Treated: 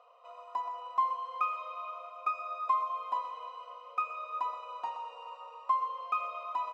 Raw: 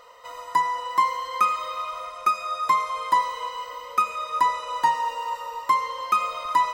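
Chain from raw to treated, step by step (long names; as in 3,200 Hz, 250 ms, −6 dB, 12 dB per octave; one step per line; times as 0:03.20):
formant filter a
single-tap delay 123 ms −12 dB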